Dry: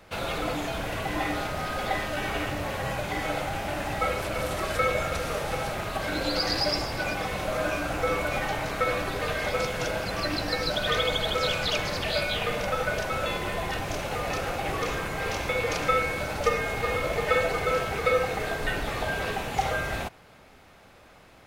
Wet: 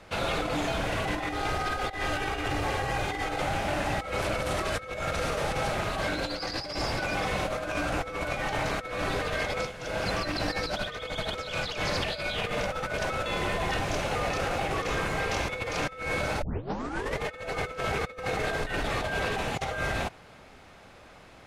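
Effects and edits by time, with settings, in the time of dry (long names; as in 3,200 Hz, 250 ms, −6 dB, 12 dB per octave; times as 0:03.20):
0:01.29–0:03.42: comb filter 2.5 ms, depth 50%
0:09.48–0:10.06: duck −13 dB, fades 0.25 s
0:16.42: tape start 0.79 s
whole clip: low-pass filter 9,800 Hz 12 dB per octave; compressor whose output falls as the input rises −30 dBFS, ratio −0.5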